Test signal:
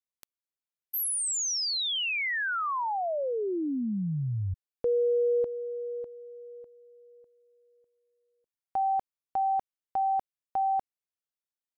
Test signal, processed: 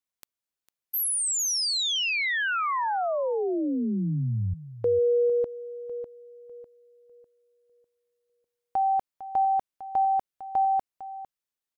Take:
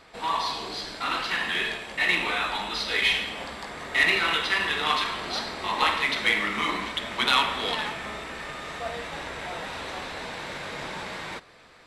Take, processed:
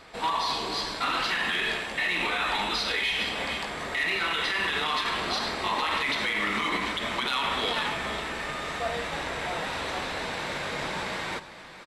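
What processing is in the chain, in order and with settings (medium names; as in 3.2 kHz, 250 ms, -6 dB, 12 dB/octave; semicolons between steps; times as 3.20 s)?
on a send: delay 453 ms -14.5 dB; on the sum: peak limiter -21 dBFS; trim +3 dB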